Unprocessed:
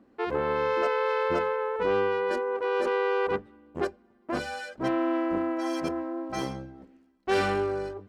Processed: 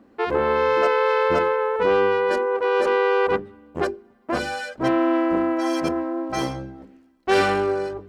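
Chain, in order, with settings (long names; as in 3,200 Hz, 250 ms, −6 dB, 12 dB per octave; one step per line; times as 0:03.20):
mains-hum notches 50/100/150/200/250/300/350/400 Hz
level +7 dB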